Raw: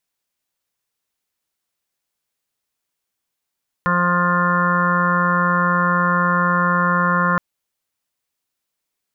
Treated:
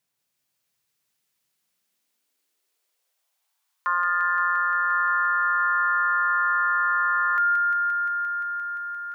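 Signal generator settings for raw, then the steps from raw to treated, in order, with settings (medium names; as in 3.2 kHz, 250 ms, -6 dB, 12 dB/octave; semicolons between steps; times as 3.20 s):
steady additive tone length 3.52 s, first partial 176 Hz, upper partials -16/-6/-18/-18.5/1/-5/-1/-17/-5 dB, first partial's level -20 dB
peak limiter -18.5 dBFS; high-pass sweep 120 Hz -> 1.4 kHz, 1.39–4.12 s; on a send: feedback echo behind a high-pass 174 ms, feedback 85%, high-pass 1.8 kHz, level -3 dB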